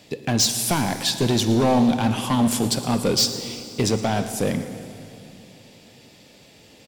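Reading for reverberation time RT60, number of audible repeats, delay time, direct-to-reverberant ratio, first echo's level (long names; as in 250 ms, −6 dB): 2.8 s, 1, 114 ms, 8.5 dB, −16.5 dB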